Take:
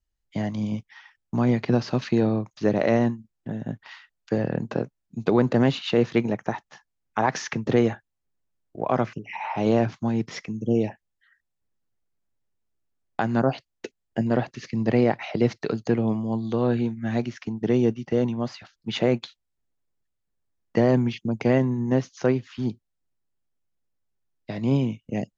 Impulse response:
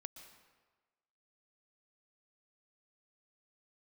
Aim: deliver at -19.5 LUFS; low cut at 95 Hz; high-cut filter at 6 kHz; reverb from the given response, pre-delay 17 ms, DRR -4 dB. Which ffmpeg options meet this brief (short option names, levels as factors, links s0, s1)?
-filter_complex "[0:a]highpass=95,lowpass=6000,asplit=2[s0][s1];[1:a]atrim=start_sample=2205,adelay=17[s2];[s1][s2]afir=irnorm=-1:irlink=0,volume=2.82[s3];[s0][s3]amix=inputs=2:normalize=0,volume=0.944"